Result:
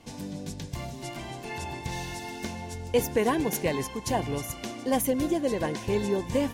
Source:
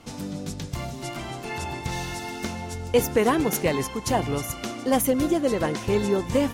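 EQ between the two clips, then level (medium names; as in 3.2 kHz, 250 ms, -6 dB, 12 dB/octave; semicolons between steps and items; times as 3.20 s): Butterworth band-stop 1.3 kHz, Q 5.3; -4.0 dB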